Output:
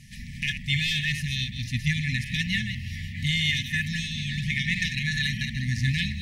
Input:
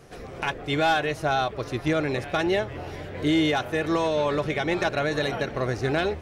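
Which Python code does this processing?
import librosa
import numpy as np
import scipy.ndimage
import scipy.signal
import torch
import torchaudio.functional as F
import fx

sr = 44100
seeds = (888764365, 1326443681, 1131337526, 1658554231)

y = fx.reverse_delay(x, sr, ms=125, wet_db=-8)
y = fx.brickwall_bandstop(y, sr, low_hz=250.0, high_hz=1700.0)
y = y * librosa.db_to_amplitude(4.5)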